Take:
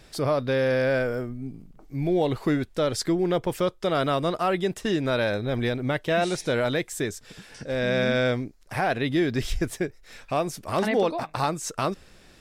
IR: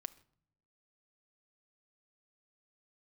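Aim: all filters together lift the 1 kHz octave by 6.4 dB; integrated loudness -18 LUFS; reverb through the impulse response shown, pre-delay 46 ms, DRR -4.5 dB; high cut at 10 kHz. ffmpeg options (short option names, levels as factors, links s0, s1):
-filter_complex "[0:a]lowpass=10000,equalizer=f=1000:t=o:g=9,asplit=2[s0][s1];[1:a]atrim=start_sample=2205,adelay=46[s2];[s1][s2]afir=irnorm=-1:irlink=0,volume=2.66[s3];[s0][s3]amix=inputs=2:normalize=0,volume=0.944"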